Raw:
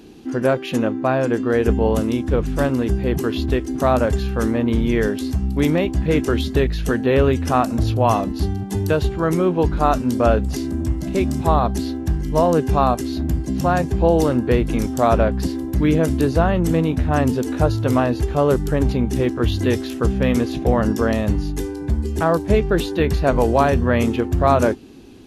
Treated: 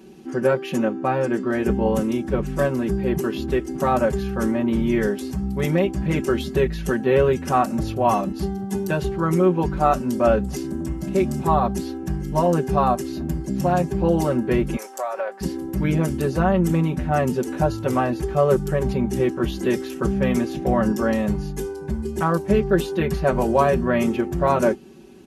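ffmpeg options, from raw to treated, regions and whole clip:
-filter_complex "[0:a]asettb=1/sr,asplit=3[s0][s1][s2];[s0]atrim=end=14.764[s3];[s1]atrim=start=14.76:end=15.41,asetpts=PTS-STARTPTS,afade=t=in:d=0.004:c=qsin,afade=t=out:st=0.646:d=0.004:c=qsin,highpass=f=530:w=0.5412,highpass=f=530:w=1.3066,equalizer=f=3300:t=o:w=0.61:g=-4,acompressor=threshold=0.1:ratio=10:attack=3.2:release=140:knee=1:detection=peak[s4];[s2]atrim=start=15.406[s5];[s3][s4]acrossfade=d=0.004:c1=hsin:c2=qsin[s6];[s6][s5]acrossfade=d=0.004:c1=qsin:c2=hsin,highpass=63,equalizer=f=3900:t=o:w=0.65:g=-6,aecho=1:1:5.3:0.99,volume=0.596"

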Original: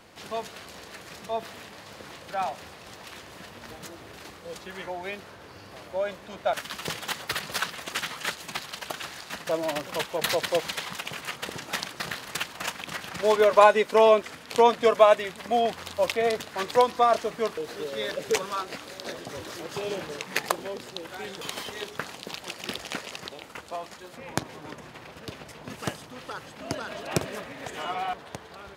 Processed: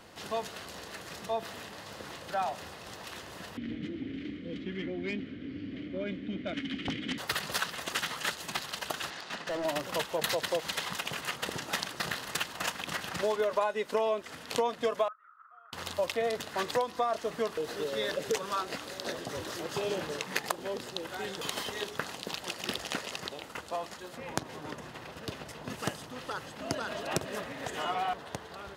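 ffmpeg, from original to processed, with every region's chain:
-filter_complex "[0:a]asettb=1/sr,asplit=3[s0][s1][s2];[s0]atrim=end=3.574[s3];[s1]atrim=start=3.57:end=7.18,asetpts=PTS-STARTPTS,afade=t=in:d=0.004:c=qsin,afade=t=out:st=3.606:d=0.004:c=qsin,asplit=3[s4][s5][s6];[s4]bandpass=f=270:t=q:w=8,volume=1[s7];[s5]bandpass=f=2290:t=q:w=8,volume=0.501[s8];[s6]bandpass=f=3010:t=q:w=8,volume=0.355[s9];[s7][s8][s9]amix=inputs=3:normalize=0,aemphasis=mode=reproduction:type=riaa,aeval=exprs='0.0447*sin(PI/2*3.55*val(0)/0.0447)':c=same[s10];[s2]atrim=start=7.176[s11];[s3][s10]acrossfade=d=0.004:c1=hsin:c2=qsin[s12];[s12][s11]acrossfade=d=0.004:c1=qsin:c2=hsin,asettb=1/sr,asplit=3[s13][s14][s15];[s13]atrim=end=9.104[s16];[s14]atrim=start=9.1:end=9.65,asetpts=PTS-STARTPTS,afade=t=in:d=0.004:c=qsin,afade=t=out:st=0.546:d=0.004:c=qsin,highpass=160,lowpass=5300,asoftclip=type=hard:threshold=0.0266[s17];[s15]atrim=start=9.646[s18];[s16][s17]acrossfade=d=0.004:c1=hsin:c2=qsin[s19];[s19][s18]acrossfade=d=0.004:c1=qsin:c2=hsin,asettb=1/sr,asplit=3[s20][s21][s22];[s20]atrim=end=15.084[s23];[s21]atrim=start=15.08:end=15.73,asetpts=PTS-STARTPTS,afade=t=in:d=0.004:c=qsin,afade=t=out:st=0.646:d=0.004:c=qsin,acompressor=mode=upward:threshold=0.0158:ratio=2.5:attack=3.2:release=140:knee=2.83:detection=peak,asuperpass=centerf=1300:order=4:qfactor=7.8[s24];[s22]atrim=start=15.726[s25];[s23][s24]acrossfade=d=0.004:c1=hsin:c2=qsin[s26];[s26][s25]acrossfade=d=0.004:c1=qsin:c2=hsin,bandreject=f=2300:w=13,acompressor=threshold=0.0447:ratio=5"

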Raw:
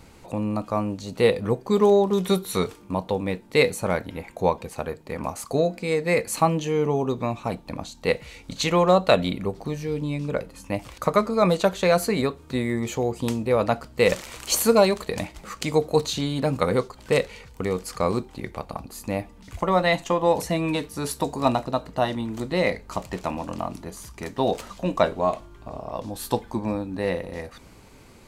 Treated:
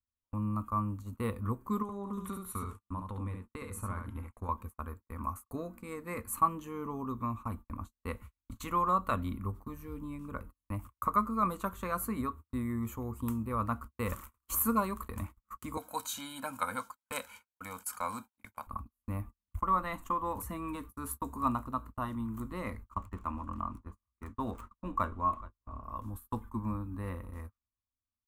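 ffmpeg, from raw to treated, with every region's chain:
-filter_complex "[0:a]asettb=1/sr,asplit=3[s0][s1][s2];[s0]atrim=end=1.824[s3];[s1]atrim=start=1.82:end=4.49,asetpts=PTS-STARTPTS,afade=t=in:d=0.004:c=qsin,afade=t=out:st=2.666:d=0.004:c=qsin,lowpass=f=11000:w=0.5412,lowpass=f=11000:w=1.3066,acompressor=threshold=0.0708:ratio=5:attack=3.2:release=140:knee=1:detection=peak,aecho=1:1:70:0.562,atrim=end_sample=117747[s4];[s2]atrim=start=4.486[s5];[s3][s4]acrossfade=d=0.004:c1=hsin:c2=qsin[s6];[s6][s5]acrossfade=d=0.004:c1=qsin:c2=hsin,asettb=1/sr,asplit=3[s7][s8][s9];[s7]atrim=end=15.774[s10];[s8]atrim=start=15.77:end=18.67,asetpts=PTS-STARTPTS,afade=t=in:d=0.004:c=qsin,afade=t=out:st=2.896:d=0.004:c=qsin,highpass=370,equalizer=f=5200:t=o:w=2.5:g=9,aecho=1:1:1.3:0.99,atrim=end_sample=127890[s11];[s9]atrim=start=18.666[s12];[s10][s11]acrossfade=d=0.004:c1=hsin:c2=qsin[s13];[s13][s12]acrossfade=d=0.004:c1=qsin:c2=hsin,asettb=1/sr,asplit=3[s14][s15][s16];[s14]atrim=end=22.914[s17];[s15]atrim=start=22.91:end=25.84,asetpts=PTS-STARTPTS,afade=t=in:d=0.004:c=qsin,afade=t=out:st=2.926:d=0.004:c=qsin,aecho=1:1:424:0.112,atrim=end_sample=129213,adynamicsmooth=sensitivity=5.5:basefreq=5100[s18];[s16]atrim=start=25.836[s19];[s17][s18]acrossfade=d=0.004:c1=hsin:c2=qsin[s20];[s20][s19]acrossfade=d=0.004:c1=qsin:c2=hsin,equalizer=f=12000:t=o:w=2.2:g=-7.5,agate=range=0.00631:threshold=0.0178:ratio=16:detection=peak,firequalizer=gain_entry='entry(100,0);entry(150,-22);entry(220,-6);entry(410,-20);entry(740,-22);entry(1100,1);entry(1700,-15);entry(4700,-24);entry(7400,-8);entry(13000,8)':delay=0.05:min_phase=1"

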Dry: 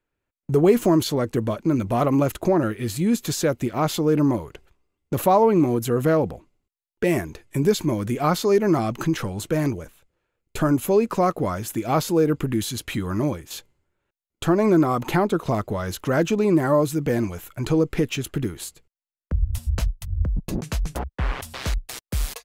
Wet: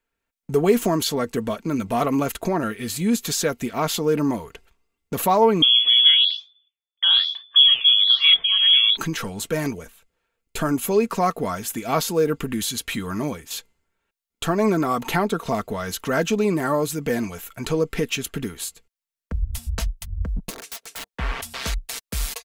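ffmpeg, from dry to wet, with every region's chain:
-filter_complex "[0:a]asettb=1/sr,asplit=3[s0][s1][s2];[s0]atrim=end=5.624[s3];[s1]atrim=start=5.62:end=8.97,asetpts=PTS-STARTPTS,afade=t=in:d=0.004:c=qsin,afade=t=out:st=3.346:d=0.004:c=qsin,lowshelf=f=270:t=q:w=3:g=8.5,lowpass=f=3000:t=q:w=0.5098,lowpass=f=3000:t=q:w=0.6013,lowpass=f=3000:t=q:w=0.9,lowpass=f=3000:t=q:w=2.563,afreqshift=-3500,flanger=delay=2.8:depth=6.5:regen=-89:speed=1.1:shape=sinusoidal[s4];[s2]atrim=start=8.966[s5];[s3][s4]acrossfade=d=0.004:c1=hsin:c2=qsin[s6];[s6][s5]acrossfade=d=0.004:c1=qsin:c2=hsin,asettb=1/sr,asplit=3[s7][s8][s9];[s7]atrim=end=20.504[s10];[s8]atrim=start=20.5:end=21.14,asetpts=PTS-STARTPTS,afade=t=in:d=0.004:c=qsin,afade=t=out:st=0.636:d=0.004:c=qsin,highpass=f=400:w=0.5412,highpass=f=400:w=1.3066,aeval=exprs='(tanh(15.8*val(0)+0.25)-tanh(0.25))/15.8':c=same,aeval=exprs='(mod(35.5*val(0)+1,2)-1)/35.5':c=same[s11];[s9]atrim=start=21.136[s12];[s10][s11]acrossfade=d=0.004:c1=hsin:c2=qsin[s13];[s13][s12]acrossfade=d=0.004:c1=qsin:c2=hsin,tiltshelf=f=970:g=-3.5,aecho=1:1:4.4:0.47"

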